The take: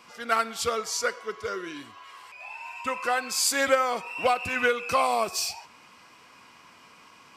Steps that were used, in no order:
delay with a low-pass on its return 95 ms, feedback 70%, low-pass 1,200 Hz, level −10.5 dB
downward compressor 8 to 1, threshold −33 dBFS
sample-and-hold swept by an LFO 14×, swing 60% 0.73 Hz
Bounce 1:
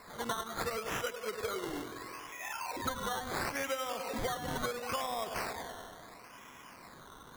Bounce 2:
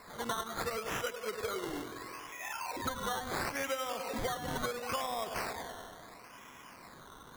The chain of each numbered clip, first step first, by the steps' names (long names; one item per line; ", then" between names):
delay with a low-pass on its return, then downward compressor, then sample-and-hold swept by an LFO
delay with a low-pass on its return, then sample-and-hold swept by an LFO, then downward compressor